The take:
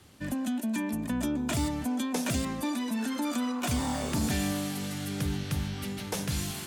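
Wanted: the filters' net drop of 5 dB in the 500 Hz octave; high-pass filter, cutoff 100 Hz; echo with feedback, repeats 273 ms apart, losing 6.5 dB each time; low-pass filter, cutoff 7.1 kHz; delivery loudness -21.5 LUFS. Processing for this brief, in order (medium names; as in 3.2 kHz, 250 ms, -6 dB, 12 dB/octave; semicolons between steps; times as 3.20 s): high-pass 100 Hz; low-pass 7.1 kHz; peaking EQ 500 Hz -6.5 dB; feedback delay 273 ms, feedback 47%, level -6.5 dB; trim +10.5 dB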